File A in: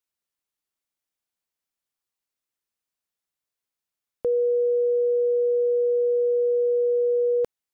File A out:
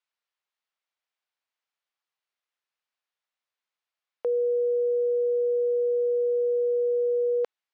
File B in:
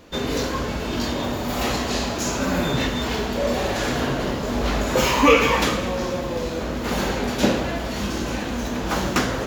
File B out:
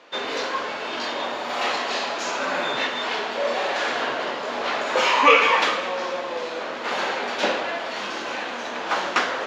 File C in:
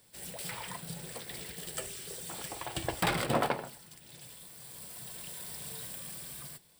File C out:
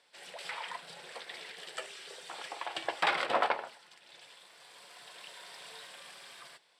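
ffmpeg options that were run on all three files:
-af "highpass=650,lowpass=3.8k,volume=3.5dB"

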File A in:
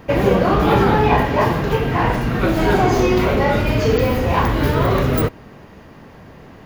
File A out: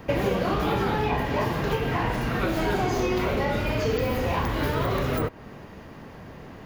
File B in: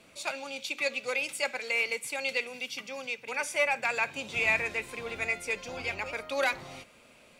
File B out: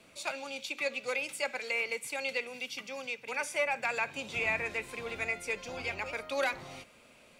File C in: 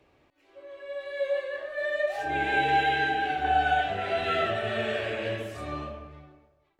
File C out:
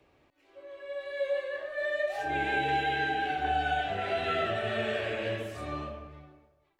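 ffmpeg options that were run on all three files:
-filter_complex "[0:a]acrossover=split=450|2200[a][b][c];[a]acompressor=threshold=-25dB:ratio=4[d];[b]acompressor=threshold=-27dB:ratio=4[e];[c]acompressor=threshold=-36dB:ratio=4[f];[d][e][f]amix=inputs=3:normalize=0,volume=-1.5dB"

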